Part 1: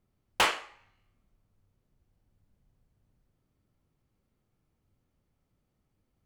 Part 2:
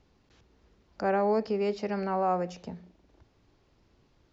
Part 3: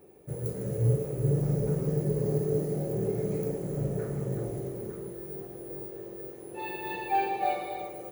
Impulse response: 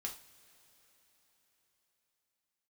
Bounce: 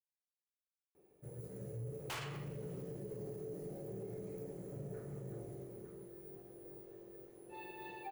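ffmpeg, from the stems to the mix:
-filter_complex "[0:a]asoftclip=type=tanh:threshold=-34.5dB,adelay=1700,volume=-1.5dB,asplit=2[link_01][link_02];[link_02]volume=-9dB[link_03];[2:a]bandreject=frequency=50:width_type=h:width=6,bandreject=frequency=100:width_type=h:width=6,bandreject=frequency=150:width_type=h:width=6,adelay=950,volume=-15dB,asplit=2[link_04][link_05];[link_05]volume=-10.5dB[link_06];[3:a]atrim=start_sample=2205[link_07];[link_03][link_06]amix=inputs=2:normalize=0[link_08];[link_08][link_07]afir=irnorm=-1:irlink=0[link_09];[link_01][link_04][link_09]amix=inputs=3:normalize=0,alimiter=level_in=13dB:limit=-24dB:level=0:latency=1:release=43,volume=-13dB"

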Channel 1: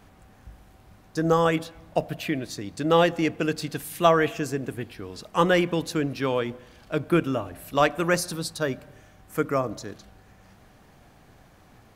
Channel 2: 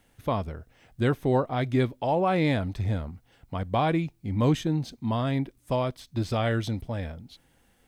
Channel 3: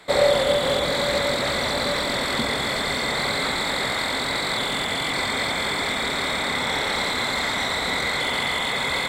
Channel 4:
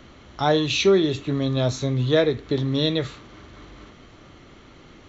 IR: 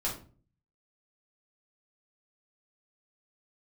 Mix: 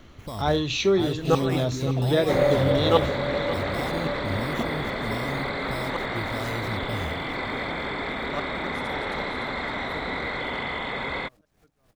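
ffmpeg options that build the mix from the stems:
-filter_complex "[0:a]acrusher=bits=8:mix=0:aa=0.000001,aeval=exprs='val(0)*pow(10,-24*if(lt(mod(-3.7*n/s,1),2*abs(-3.7)/1000),1-mod(-3.7*n/s,1)/(2*abs(-3.7)/1000),(mod(-3.7*n/s,1)-2*abs(-3.7)/1000)/(1-2*abs(-3.7)/1000))/20)':channel_layout=same,volume=2dB,asplit=2[link_01][link_02];[link_02]volume=-13dB[link_03];[1:a]acompressor=threshold=-28dB:ratio=2,alimiter=level_in=4.5dB:limit=-24dB:level=0:latency=1,volume=-4.5dB,acrusher=samples=10:mix=1:aa=0.000001,volume=1dB,asplit=2[link_04][link_05];[link_05]volume=-16.5dB[link_06];[2:a]lowpass=2500,equalizer=frequency=330:width=1.1:gain=3.5,adelay=2200,volume=-4.5dB[link_07];[3:a]volume=-4dB,asplit=3[link_08][link_09][link_10];[link_09]volume=-12dB[link_11];[link_10]apad=whole_len=527293[link_12];[link_01][link_12]sidechaingate=range=-33dB:threshold=-38dB:ratio=16:detection=peak[link_13];[link_03][link_06][link_11]amix=inputs=3:normalize=0,aecho=0:1:561|1122|1683|2244|2805:1|0.39|0.152|0.0593|0.0231[link_14];[link_13][link_04][link_07][link_08][link_14]amix=inputs=5:normalize=0,lowshelf=frequency=70:gain=8"

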